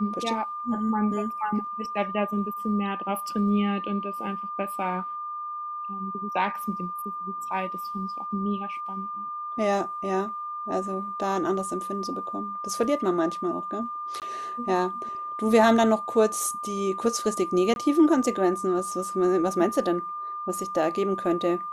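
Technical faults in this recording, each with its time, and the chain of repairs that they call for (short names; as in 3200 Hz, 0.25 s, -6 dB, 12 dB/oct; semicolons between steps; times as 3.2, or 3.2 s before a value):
tone 1200 Hz -31 dBFS
14.2–14.22 gap 18 ms
17.74–17.76 gap 21 ms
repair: notch 1200 Hz, Q 30; interpolate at 14.2, 18 ms; interpolate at 17.74, 21 ms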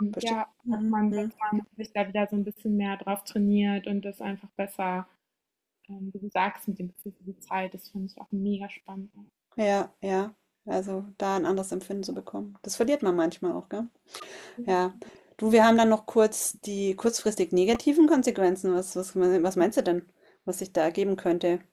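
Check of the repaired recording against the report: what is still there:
none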